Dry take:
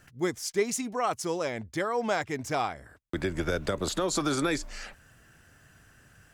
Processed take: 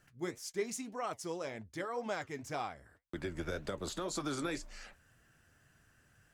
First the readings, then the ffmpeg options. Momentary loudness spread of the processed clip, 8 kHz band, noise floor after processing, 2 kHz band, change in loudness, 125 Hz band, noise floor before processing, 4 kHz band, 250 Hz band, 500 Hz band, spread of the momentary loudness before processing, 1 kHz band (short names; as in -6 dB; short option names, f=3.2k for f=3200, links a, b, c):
7 LU, -10.0 dB, -69 dBFS, -10.0 dB, -9.5 dB, -9.5 dB, -59 dBFS, -9.5 dB, -9.5 dB, -9.5 dB, 8 LU, -10.0 dB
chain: -af "flanger=delay=4.8:depth=7.6:regen=-65:speed=1.9:shape=triangular,volume=-5.5dB"